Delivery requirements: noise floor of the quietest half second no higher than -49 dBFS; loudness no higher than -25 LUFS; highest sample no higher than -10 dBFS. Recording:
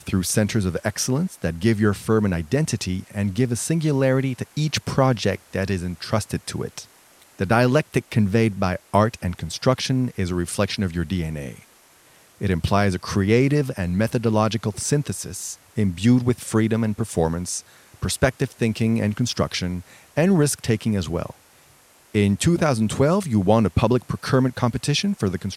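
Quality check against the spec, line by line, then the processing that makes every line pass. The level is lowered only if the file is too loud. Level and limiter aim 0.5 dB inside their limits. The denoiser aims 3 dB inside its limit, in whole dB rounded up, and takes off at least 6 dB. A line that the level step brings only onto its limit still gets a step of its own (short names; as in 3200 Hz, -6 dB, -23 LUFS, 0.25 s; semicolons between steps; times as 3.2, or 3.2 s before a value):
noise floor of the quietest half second -54 dBFS: OK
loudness -22.0 LUFS: fail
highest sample -3.0 dBFS: fail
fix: gain -3.5 dB; limiter -10.5 dBFS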